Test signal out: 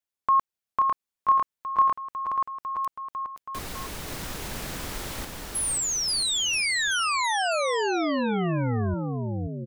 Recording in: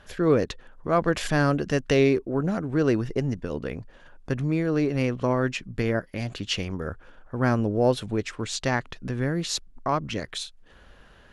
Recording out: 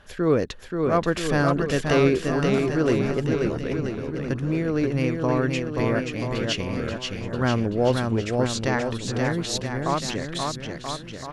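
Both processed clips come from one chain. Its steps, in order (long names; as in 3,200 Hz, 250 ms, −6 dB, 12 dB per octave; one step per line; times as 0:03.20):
bouncing-ball delay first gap 530 ms, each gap 0.85×, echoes 5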